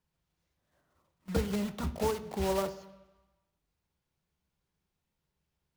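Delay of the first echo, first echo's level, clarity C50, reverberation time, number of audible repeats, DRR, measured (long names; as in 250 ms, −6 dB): no echo audible, no echo audible, 14.5 dB, 1.1 s, no echo audible, 9.0 dB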